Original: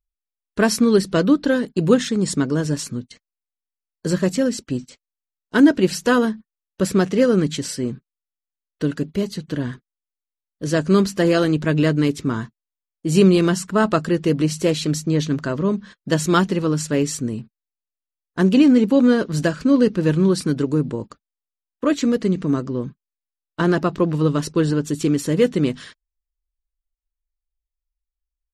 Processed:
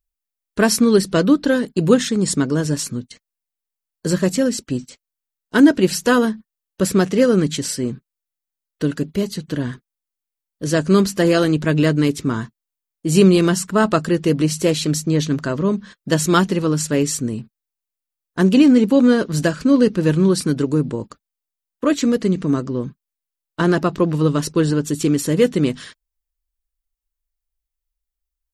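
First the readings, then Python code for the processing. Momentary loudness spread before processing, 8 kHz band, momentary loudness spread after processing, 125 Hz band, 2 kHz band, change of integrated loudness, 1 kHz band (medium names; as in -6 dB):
13 LU, +5.0 dB, 13 LU, +1.5 dB, +1.5 dB, +1.5 dB, +1.5 dB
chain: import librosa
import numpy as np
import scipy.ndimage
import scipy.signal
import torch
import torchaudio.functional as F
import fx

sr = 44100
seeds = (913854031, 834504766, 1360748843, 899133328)

y = fx.high_shelf(x, sr, hz=8600.0, db=8.0)
y = y * librosa.db_to_amplitude(1.5)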